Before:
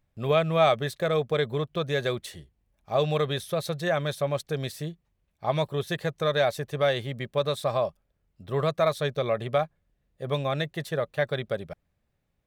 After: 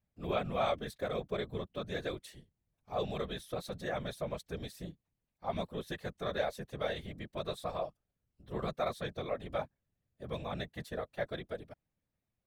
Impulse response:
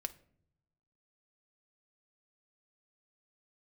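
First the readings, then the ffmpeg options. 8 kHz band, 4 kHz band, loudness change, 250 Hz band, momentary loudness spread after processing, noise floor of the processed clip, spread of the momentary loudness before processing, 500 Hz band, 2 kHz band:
-11.0 dB, -11.0 dB, -11.0 dB, -8.5 dB, 8 LU, under -85 dBFS, 9 LU, -11.5 dB, -11.0 dB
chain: -af "afftfilt=real='hypot(re,im)*cos(2*PI*random(0))':imag='hypot(re,im)*sin(2*PI*random(1))':win_size=512:overlap=0.75,volume=-5dB"

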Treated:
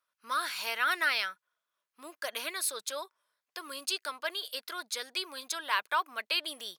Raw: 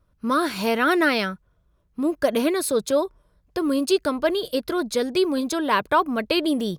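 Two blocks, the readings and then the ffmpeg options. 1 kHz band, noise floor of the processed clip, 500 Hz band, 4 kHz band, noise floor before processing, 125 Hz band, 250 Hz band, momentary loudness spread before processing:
-9.5 dB, under -85 dBFS, -21.0 dB, -3.5 dB, -65 dBFS, n/a, -30.0 dB, 7 LU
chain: -af "highpass=1.4k,volume=-3.5dB"

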